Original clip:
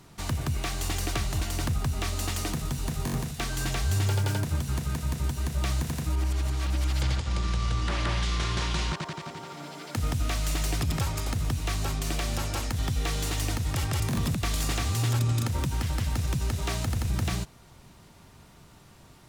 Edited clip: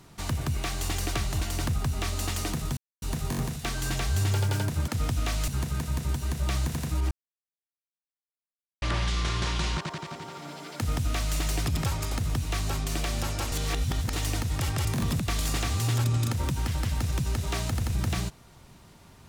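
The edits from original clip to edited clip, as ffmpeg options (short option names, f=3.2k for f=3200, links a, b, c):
-filter_complex "[0:a]asplit=8[a][b][c][d][e][f][g][h];[a]atrim=end=2.77,asetpts=PTS-STARTPTS,afade=t=out:st=2.766:d=0.004:c=hsin,apad=pad_dur=0.25[i];[b]atrim=start=2.77:end=4.632,asetpts=PTS-STARTPTS,afade=t=in:d=0.004:c=hsin[j];[c]atrim=start=9.908:end=10.512[k];[d]atrim=start=4.628:end=6.26,asetpts=PTS-STARTPTS,afade=t=out:st=1.628:d=0.004:c=hsin[l];[e]atrim=start=6.26:end=7.97,asetpts=PTS-STARTPTS,volume=0[m];[f]atrim=start=7.97:end=12.672,asetpts=PTS-STARTPTS,afade=t=in:d=0.004:c=hsin[n];[g]atrim=start=12.668:end=13.282,asetpts=PTS-STARTPTS,areverse[o];[h]atrim=start=13.278[p];[i][j]concat=n=2:v=0:a=1[q];[q][k]acrossfade=d=0.004:c1=hsin:c2=hsin[r];[l][m][n]concat=n=3:v=0:a=1[s];[r][s]acrossfade=d=0.004:c1=hsin:c2=hsin[t];[t][o]acrossfade=d=0.004:c1=hsin:c2=hsin[u];[u][p]acrossfade=d=0.004:c1=hsin:c2=hsin"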